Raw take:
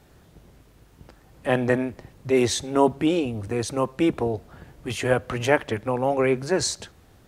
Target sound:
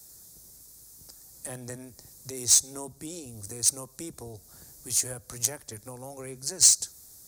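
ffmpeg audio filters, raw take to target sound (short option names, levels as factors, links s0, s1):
-filter_complex "[0:a]acrossover=split=140[s0][s1];[s1]acompressor=threshold=0.0158:ratio=2[s2];[s0][s2]amix=inputs=2:normalize=0,aexciter=amount=9.5:drive=9.9:freq=4600,aeval=exprs='1.12*(cos(1*acos(clip(val(0)/1.12,-1,1)))-cos(1*PI/2))+0.158*(cos(3*acos(clip(val(0)/1.12,-1,1)))-cos(3*PI/2))+0.0251*(cos(7*acos(clip(val(0)/1.12,-1,1)))-cos(7*PI/2))':c=same,volume=0.668"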